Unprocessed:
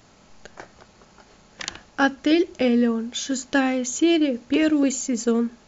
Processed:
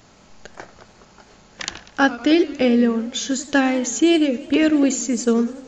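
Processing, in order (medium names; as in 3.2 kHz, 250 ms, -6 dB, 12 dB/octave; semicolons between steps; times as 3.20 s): modulated delay 94 ms, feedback 60%, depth 217 cents, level -17 dB; trim +3 dB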